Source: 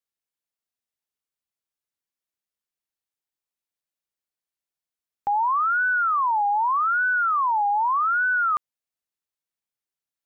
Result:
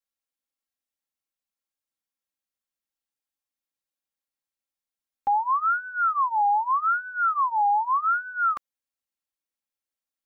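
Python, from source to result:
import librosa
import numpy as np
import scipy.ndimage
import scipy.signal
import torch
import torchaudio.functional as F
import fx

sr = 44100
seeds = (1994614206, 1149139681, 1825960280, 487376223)

y = x + 0.81 * np.pad(x, (int(3.7 * sr / 1000.0), 0))[:len(x)]
y = F.gain(torch.from_numpy(y), -4.0).numpy()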